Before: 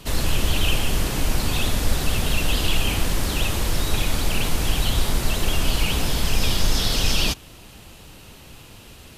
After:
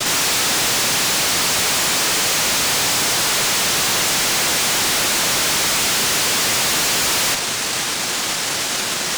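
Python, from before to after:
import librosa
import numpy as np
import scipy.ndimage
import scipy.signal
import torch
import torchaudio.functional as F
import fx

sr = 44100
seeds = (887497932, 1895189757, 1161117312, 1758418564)

y = fx.noise_vocoder(x, sr, seeds[0], bands=1)
y = fx.fuzz(y, sr, gain_db=49.0, gate_db=-53.0)
y = F.gain(torch.from_numpy(y), -4.0).numpy()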